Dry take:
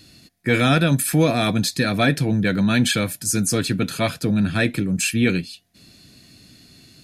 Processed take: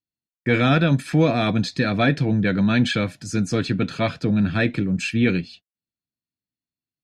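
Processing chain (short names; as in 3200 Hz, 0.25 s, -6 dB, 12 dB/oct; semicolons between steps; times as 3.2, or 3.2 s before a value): gate -40 dBFS, range -46 dB; air absorption 150 m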